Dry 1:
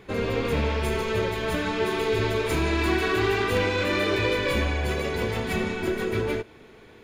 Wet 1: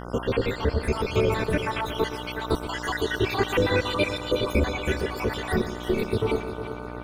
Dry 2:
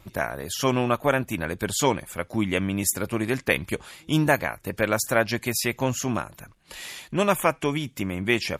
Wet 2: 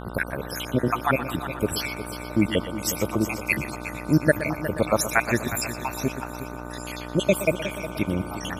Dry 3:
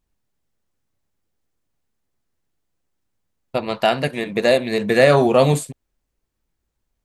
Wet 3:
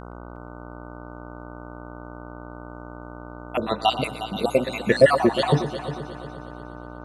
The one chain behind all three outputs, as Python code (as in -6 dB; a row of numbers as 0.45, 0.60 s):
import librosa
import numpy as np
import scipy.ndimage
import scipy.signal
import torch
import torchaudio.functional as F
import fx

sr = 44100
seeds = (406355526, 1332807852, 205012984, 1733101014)

y = fx.spec_dropout(x, sr, seeds[0], share_pct=71)
y = fx.dmg_buzz(y, sr, base_hz=60.0, harmonics=25, level_db=-41.0, tilt_db=-3, odd_only=False)
y = fx.echo_heads(y, sr, ms=120, heads='first and third', feedback_pct=52, wet_db=-13.0)
y = y * 10.0 ** (-26 / 20.0) / np.sqrt(np.mean(np.square(y)))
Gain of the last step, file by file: +4.0, +4.5, +2.0 dB